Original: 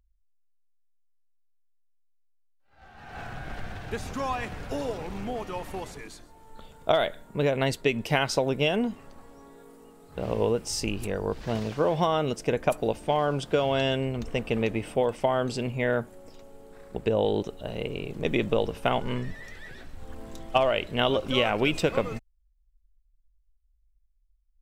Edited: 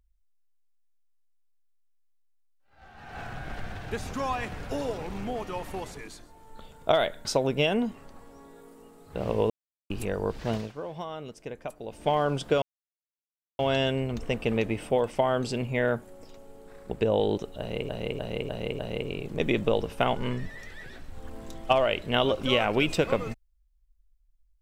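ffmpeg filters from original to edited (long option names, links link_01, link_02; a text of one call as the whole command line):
ffmpeg -i in.wav -filter_complex "[0:a]asplit=11[link_01][link_02][link_03][link_04][link_05][link_06][link_07][link_08][link_09][link_10][link_11];[link_01]atrim=end=7.252[link_12];[link_02]atrim=start=8.268:end=10.52,asetpts=PTS-STARTPTS,afade=type=out:start_time=2.248:duration=0.004:curve=hsin[link_13];[link_03]atrim=start=10.52:end=10.92,asetpts=PTS-STARTPTS,volume=0[link_14];[link_04]atrim=start=10.92:end=11.75,asetpts=PTS-STARTPTS,afade=type=in:duration=0.004:curve=hsin,afade=type=out:start_time=0.64:duration=0.19:silence=0.237137[link_15];[link_05]atrim=start=11.75:end=12.9,asetpts=PTS-STARTPTS,volume=-12.5dB[link_16];[link_06]atrim=start=12.9:end=13.64,asetpts=PTS-STARTPTS,afade=type=in:duration=0.19:silence=0.237137,afade=type=out:start_time=0.736:duration=0.004:curve=hsin,apad=pad_dur=0.97[link_17];[link_07]atrim=start=13.64:end=17.942,asetpts=PTS-STARTPTS,afade=type=in:duration=0.004:curve=hsin[link_18];[link_08]atrim=start=17.638:end=17.942[link_19];[link_09]atrim=start=17.638:end=17.942[link_20];[link_10]atrim=start=17.638:end=17.942[link_21];[link_11]atrim=start=17.638[link_22];[link_13][link_14][link_15][link_16][link_17][link_18]concat=n=6:v=0:a=1[link_23];[link_12][link_23]acrossfade=duration=0.004:curve1=hsin:curve2=hsin[link_24];[link_24][link_19]acrossfade=duration=0.004:curve1=hsin:curve2=hsin[link_25];[link_25][link_20]acrossfade=duration=0.004:curve1=hsin:curve2=hsin[link_26];[link_26][link_21]acrossfade=duration=0.004:curve1=hsin:curve2=hsin[link_27];[link_27][link_22]acrossfade=duration=0.004:curve1=hsin:curve2=hsin" out.wav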